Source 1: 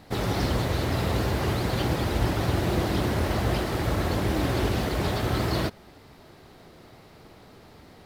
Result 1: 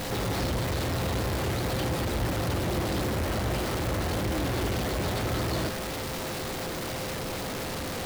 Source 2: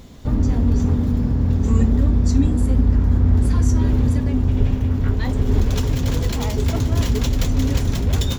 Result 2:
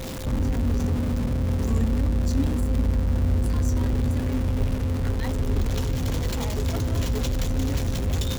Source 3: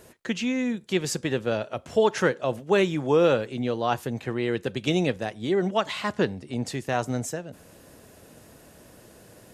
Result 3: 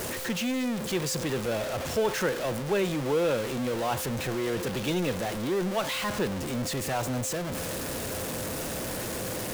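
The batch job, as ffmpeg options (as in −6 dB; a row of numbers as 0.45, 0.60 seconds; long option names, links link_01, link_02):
-af "aeval=exprs='val(0)+0.5*0.106*sgn(val(0))':channel_layout=same,aeval=exprs='val(0)+0.0251*sin(2*PI*520*n/s)':channel_layout=same,volume=-8.5dB"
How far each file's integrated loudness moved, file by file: −3.5, −6.0, −3.5 LU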